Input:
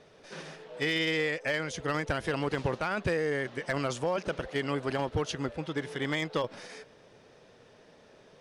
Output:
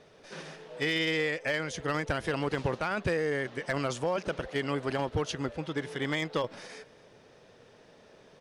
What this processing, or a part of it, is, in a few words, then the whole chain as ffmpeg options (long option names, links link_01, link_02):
ducked delay: -filter_complex "[0:a]asplit=3[link_01][link_02][link_03];[link_02]adelay=249,volume=-8.5dB[link_04];[link_03]apad=whole_len=377723[link_05];[link_04][link_05]sidechaincompress=threshold=-50dB:ratio=8:attack=16:release=814[link_06];[link_01][link_06]amix=inputs=2:normalize=0"